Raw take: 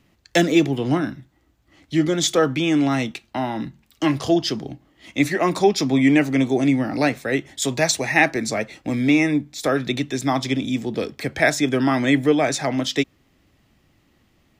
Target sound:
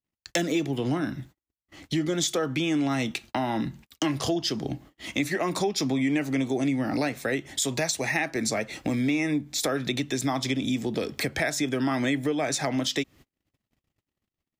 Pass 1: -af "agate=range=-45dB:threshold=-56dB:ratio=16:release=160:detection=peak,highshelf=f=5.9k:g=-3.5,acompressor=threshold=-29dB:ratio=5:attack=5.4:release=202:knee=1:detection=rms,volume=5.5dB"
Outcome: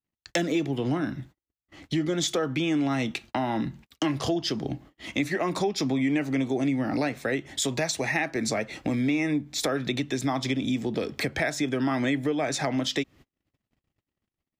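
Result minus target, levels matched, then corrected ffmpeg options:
8000 Hz band -3.0 dB
-af "agate=range=-45dB:threshold=-56dB:ratio=16:release=160:detection=peak,highshelf=f=5.9k:g=5.5,acompressor=threshold=-29dB:ratio=5:attack=5.4:release=202:knee=1:detection=rms,volume=5.5dB"

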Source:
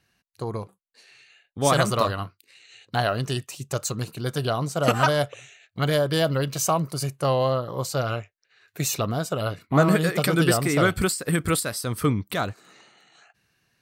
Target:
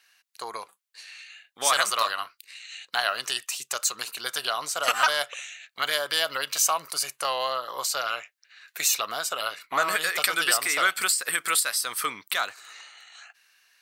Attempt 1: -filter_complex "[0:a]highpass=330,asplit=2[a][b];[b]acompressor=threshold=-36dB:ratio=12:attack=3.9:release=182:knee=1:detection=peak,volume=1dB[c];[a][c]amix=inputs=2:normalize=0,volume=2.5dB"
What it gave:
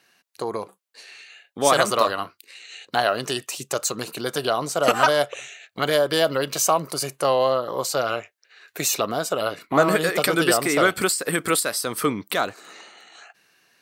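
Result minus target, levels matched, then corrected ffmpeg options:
250 Hz band +17.0 dB
-filter_complex "[0:a]highpass=1.3k,asplit=2[a][b];[b]acompressor=threshold=-36dB:ratio=12:attack=3.9:release=182:knee=1:detection=peak,volume=1dB[c];[a][c]amix=inputs=2:normalize=0,volume=2.5dB"

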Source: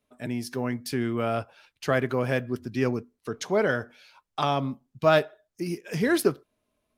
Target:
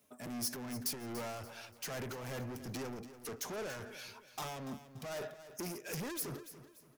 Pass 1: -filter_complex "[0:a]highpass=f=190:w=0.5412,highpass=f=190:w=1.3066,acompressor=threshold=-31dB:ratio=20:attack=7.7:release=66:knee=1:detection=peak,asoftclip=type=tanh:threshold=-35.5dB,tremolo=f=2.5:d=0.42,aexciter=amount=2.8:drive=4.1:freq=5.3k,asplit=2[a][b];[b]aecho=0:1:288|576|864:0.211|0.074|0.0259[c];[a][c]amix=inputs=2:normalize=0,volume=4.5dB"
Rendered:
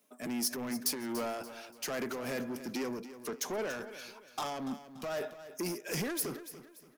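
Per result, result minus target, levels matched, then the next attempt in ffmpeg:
125 Hz band -6.5 dB; soft clip: distortion -5 dB
-filter_complex "[0:a]highpass=f=86:w=0.5412,highpass=f=86:w=1.3066,acompressor=threshold=-31dB:ratio=20:attack=7.7:release=66:knee=1:detection=peak,asoftclip=type=tanh:threshold=-35.5dB,tremolo=f=2.5:d=0.42,aexciter=amount=2.8:drive=4.1:freq=5.3k,asplit=2[a][b];[b]aecho=0:1:288|576|864:0.211|0.074|0.0259[c];[a][c]amix=inputs=2:normalize=0,volume=4.5dB"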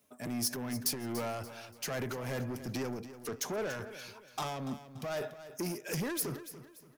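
soft clip: distortion -4 dB
-filter_complex "[0:a]highpass=f=86:w=0.5412,highpass=f=86:w=1.3066,acompressor=threshold=-31dB:ratio=20:attack=7.7:release=66:knee=1:detection=peak,asoftclip=type=tanh:threshold=-43dB,tremolo=f=2.5:d=0.42,aexciter=amount=2.8:drive=4.1:freq=5.3k,asplit=2[a][b];[b]aecho=0:1:288|576|864:0.211|0.074|0.0259[c];[a][c]amix=inputs=2:normalize=0,volume=4.5dB"

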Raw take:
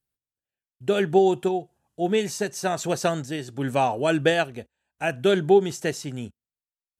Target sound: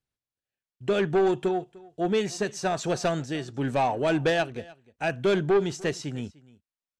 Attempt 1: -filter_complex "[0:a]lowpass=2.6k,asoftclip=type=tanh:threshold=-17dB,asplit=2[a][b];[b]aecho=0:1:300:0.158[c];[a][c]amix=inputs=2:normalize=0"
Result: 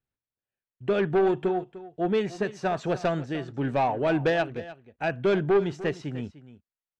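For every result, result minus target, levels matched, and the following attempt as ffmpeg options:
8000 Hz band -13.0 dB; echo-to-direct +6 dB
-filter_complex "[0:a]lowpass=6.4k,asoftclip=type=tanh:threshold=-17dB,asplit=2[a][b];[b]aecho=0:1:300:0.158[c];[a][c]amix=inputs=2:normalize=0"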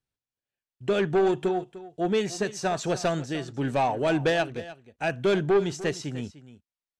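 echo-to-direct +6 dB
-filter_complex "[0:a]lowpass=6.4k,asoftclip=type=tanh:threshold=-17dB,asplit=2[a][b];[b]aecho=0:1:300:0.0794[c];[a][c]amix=inputs=2:normalize=0"

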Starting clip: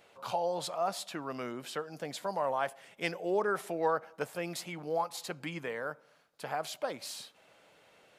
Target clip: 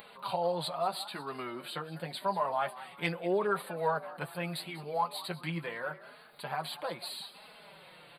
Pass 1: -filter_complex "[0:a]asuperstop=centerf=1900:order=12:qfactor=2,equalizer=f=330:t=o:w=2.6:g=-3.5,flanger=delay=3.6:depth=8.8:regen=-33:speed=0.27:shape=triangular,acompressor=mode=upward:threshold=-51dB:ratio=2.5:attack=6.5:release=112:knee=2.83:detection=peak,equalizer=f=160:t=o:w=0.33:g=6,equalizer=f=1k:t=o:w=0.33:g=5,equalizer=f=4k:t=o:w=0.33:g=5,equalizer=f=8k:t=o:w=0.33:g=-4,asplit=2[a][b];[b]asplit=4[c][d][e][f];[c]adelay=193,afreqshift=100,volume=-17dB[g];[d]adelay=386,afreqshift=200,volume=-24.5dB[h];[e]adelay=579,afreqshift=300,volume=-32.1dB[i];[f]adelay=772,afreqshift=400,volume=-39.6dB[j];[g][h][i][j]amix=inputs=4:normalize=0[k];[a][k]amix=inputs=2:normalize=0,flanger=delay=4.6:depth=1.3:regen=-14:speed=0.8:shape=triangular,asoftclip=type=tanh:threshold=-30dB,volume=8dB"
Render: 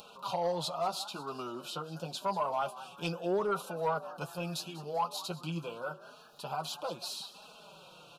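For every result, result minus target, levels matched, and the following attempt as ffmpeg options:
soft clip: distortion +15 dB; 2000 Hz band -5.0 dB
-filter_complex "[0:a]asuperstop=centerf=1900:order=12:qfactor=2,equalizer=f=330:t=o:w=2.6:g=-3.5,flanger=delay=3.6:depth=8.8:regen=-33:speed=0.27:shape=triangular,acompressor=mode=upward:threshold=-51dB:ratio=2.5:attack=6.5:release=112:knee=2.83:detection=peak,equalizer=f=160:t=o:w=0.33:g=6,equalizer=f=1k:t=o:w=0.33:g=5,equalizer=f=4k:t=o:w=0.33:g=5,equalizer=f=8k:t=o:w=0.33:g=-4,asplit=2[a][b];[b]asplit=4[c][d][e][f];[c]adelay=193,afreqshift=100,volume=-17dB[g];[d]adelay=386,afreqshift=200,volume=-24.5dB[h];[e]adelay=579,afreqshift=300,volume=-32.1dB[i];[f]adelay=772,afreqshift=400,volume=-39.6dB[j];[g][h][i][j]amix=inputs=4:normalize=0[k];[a][k]amix=inputs=2:normalize=0,flanger=delay=4.6:depth=1.3:regen=-14:speed=0.8:shape=triangular,asoftclip=type=tanh:threshold=-20.5dB,volume=8dB"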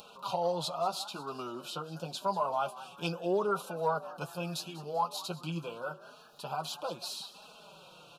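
2000 Hz band -5.5 dB
-filter_complex "[0:a]asuperstop=centerf=6100:order=12:qfactor=2,equalizer=f=330:t=o:w=2.6:g=-3.5,flanger=delay=3.6:depth=8.8:regen=-33:speed=0.27:shape=triangular,acompressor=mode=upward:threshold=-51dB:ratio=2.5:attack=6.5:release=112:knee=2.83:detection=peak,equalizer=f=160:t=o:w=0.33:g=6,equalizer=f=1k:t=o:w=0.33:g=5,equalizer=f=4k:t=o:w=0.33:g=5,equalizer=f=8k:t=o:w=0.33:g=-4,asplit=2[a][b];[b]asplit=4[c][d][e][f];[c]adelay=193,afreqshift=100,volume=-17dB[g];[d]adelay=386,afreqshift=200,volume=-24.5dB[h];[e]adelay=579,afreqshift=300,volume=-32.1dB[i];[f]adelay=772,afreqshift=400,volume=-39.6dB[j];[g][h][i][j]amix=inputs=4:normalize=0[k];[a][k]amix=inputs=2:normalize=0,flanger=delay=4.6:depth=1.3:regen=-14:speed=0.8:shape=triangular,asoftclip=type=tanh:threshold=-20.5dB,volume=8dB"

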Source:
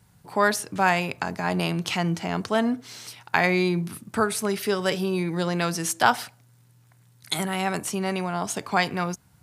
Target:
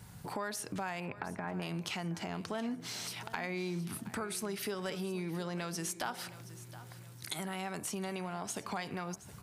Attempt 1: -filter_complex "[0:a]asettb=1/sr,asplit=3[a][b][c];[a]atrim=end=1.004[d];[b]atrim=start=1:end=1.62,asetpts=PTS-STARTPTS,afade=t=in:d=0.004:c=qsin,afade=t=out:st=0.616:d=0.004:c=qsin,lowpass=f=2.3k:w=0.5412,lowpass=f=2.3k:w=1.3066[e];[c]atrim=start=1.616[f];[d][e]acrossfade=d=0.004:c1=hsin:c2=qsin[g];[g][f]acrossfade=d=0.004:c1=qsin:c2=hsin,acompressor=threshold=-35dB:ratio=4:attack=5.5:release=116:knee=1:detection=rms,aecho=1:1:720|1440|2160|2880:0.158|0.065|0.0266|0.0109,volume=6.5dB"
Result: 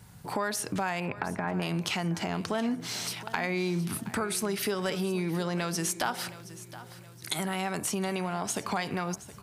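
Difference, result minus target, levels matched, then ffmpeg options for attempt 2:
compressor: peak gain reduction -7.5 dB
-filter_complex "[0:a]asettb=1/sr,asplit=3[a][b][c];[a]atrim=end=1.004[d];[b]atrim=start=1:end=1.62,asetpts=PTS-STARTPTS,afade=t=in:d=0.004:c=qsin,afade=t=out:st=0.616:d=0.004:c=qsin,lowpass=f=2.3k:w=0.5412,lowpass=f=2.3k:w=1.3066[e];[c]atrim=start=1.616[f];[d][e]acrossfade=d=0.004:c1=hsin:c2=qsin[g];[g][f]acrossfade=d=0.004:c1=qsin:c2=hsin,acompressor=threshold=-45dB:ratio=4:attack=5.5:release=116:knee=1:detection=rms,aecho=1:1:720|1440|2160|2880:0.158|0.065|0.0266|0.0109,volume=6.5dB"

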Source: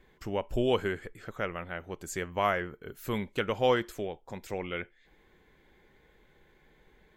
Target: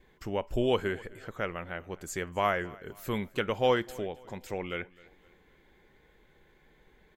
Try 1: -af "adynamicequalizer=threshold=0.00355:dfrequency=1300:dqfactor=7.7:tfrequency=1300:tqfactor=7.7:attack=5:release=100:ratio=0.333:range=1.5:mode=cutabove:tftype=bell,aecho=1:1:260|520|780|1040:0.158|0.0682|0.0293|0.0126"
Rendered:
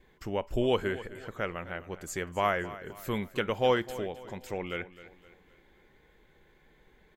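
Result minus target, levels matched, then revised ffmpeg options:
echo-to-direct +6.5 dB
-af "adynamicequalizer=threshold=0.00355:dfrequency=1300:dqfactor=7.7:tfrequency=1300:tqfactor=7.7:attack=5:release=100:ratio=0.333:range=1.5:mode=cutabove:tftype=bell,aecho=1:1:260|520|780:0.075|0.0322|0.0139"

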